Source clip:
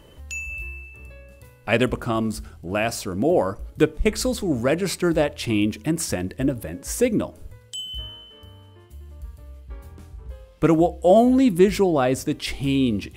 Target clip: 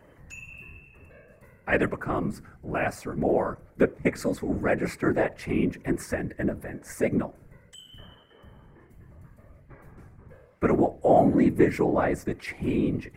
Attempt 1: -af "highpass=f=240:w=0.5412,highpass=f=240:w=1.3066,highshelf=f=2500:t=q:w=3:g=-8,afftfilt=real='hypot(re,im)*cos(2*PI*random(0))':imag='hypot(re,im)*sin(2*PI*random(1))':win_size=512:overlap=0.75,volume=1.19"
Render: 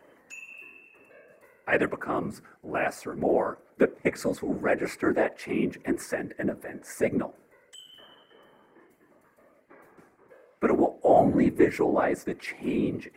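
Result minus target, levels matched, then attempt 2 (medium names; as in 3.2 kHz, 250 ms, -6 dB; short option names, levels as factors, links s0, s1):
125 Hz band -5.5 dB
-af "highpass=f=78:w=0.5412,highpass=f=78:w=1.3066,highshelf=f=2500:t=q:w=3:g=-8,afftfilt=real='hypot(re,im)*cos(2*PI*random(0))':imag='hypot(re,im)*sin(2*PI*random(1))':win_size=512:overlap=0.75,volume=1.19"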